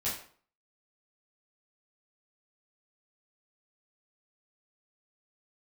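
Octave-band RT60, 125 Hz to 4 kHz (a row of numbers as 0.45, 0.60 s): 0.50, 0.50, 0.50, 0.50, 0.45, 0.40 s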